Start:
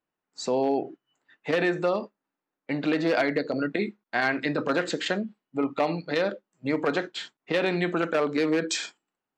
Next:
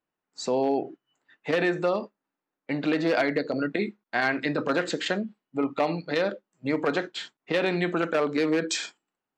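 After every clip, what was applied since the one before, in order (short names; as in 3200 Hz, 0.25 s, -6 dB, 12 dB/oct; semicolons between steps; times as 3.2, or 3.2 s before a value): nothing audible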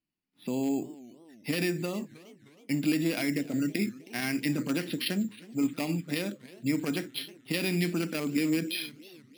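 band shelf 840 Hz -15.5 dB 2.4 oct; careless resampling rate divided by 6×, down filtered, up hold; warbling echo 0.312 s, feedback 52%, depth 208 cents, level -20 dB; gain +2 dB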